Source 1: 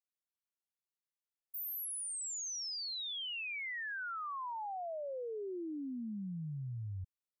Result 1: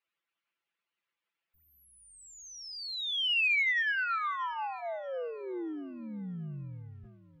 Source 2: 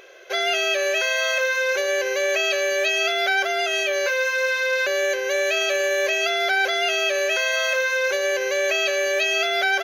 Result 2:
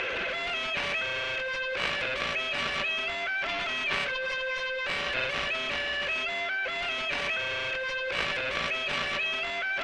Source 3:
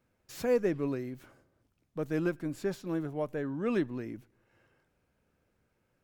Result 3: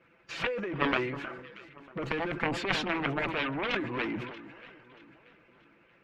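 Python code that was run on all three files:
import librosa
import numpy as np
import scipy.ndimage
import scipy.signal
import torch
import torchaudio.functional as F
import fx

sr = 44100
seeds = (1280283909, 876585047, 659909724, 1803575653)

y = fx.spec_quant(x, sr, step_db=15)
y = fx.highpass(y, sr, hz=130.0, slope=6)
y = fx.peak_eq(y, sr, hz=1300.0, db=3.5, octaves=0.33)
y = fx.notch(y, sr, hz=730.0, q=12.0)
y = fx.hpss(y, sr, part='percussive', gain_db=8)
y = fx.low_shelf(y, sr, hz=270.0, db=-4.0)
y = y + 0.45 * np.pad(y, (int(5.9 * sr / 1000.0), 0))[:len(y)]
y = fx.over_compress(y, sr, threshold_db=-32.0, ratio=-1.0)
y = fx.cheby_harmonics(y, sr, harmonics=(2, 7, 8), levels_db=(-30, -10, -44), full_scale_db=-15.0)
y = fx.lowpass_res(y, sr, hz=2600.0, q=2.0)
y = fx.echo_alternate(y, sr, ms=316, hz=1500.0, feedback_pct=61, wet_db=-14.0)
y = fx.sustainer(y, sr, db_per_s=58.0)
y = y * 10.0 ** (2.5 / 20.0)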